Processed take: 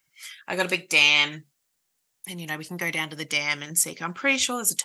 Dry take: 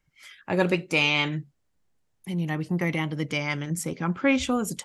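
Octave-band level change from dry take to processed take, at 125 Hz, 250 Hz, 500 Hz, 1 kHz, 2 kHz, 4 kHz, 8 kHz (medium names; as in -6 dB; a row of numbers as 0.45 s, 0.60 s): -10.5 dB, -8.0 dB, -4.0 dB, -0.5 dB, +4.5 dB, +7.0 dB, +12.0 dB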